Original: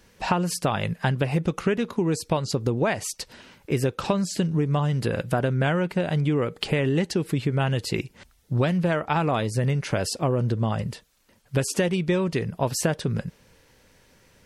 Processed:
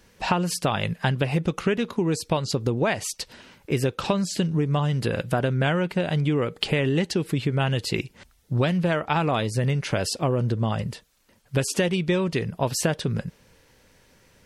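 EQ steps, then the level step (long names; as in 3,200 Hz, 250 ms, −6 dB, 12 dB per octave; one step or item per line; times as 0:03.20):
dynamic equaliser 3,300 Hz, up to +4 dB, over −43 dBFS, Q 1.3
0.0 dB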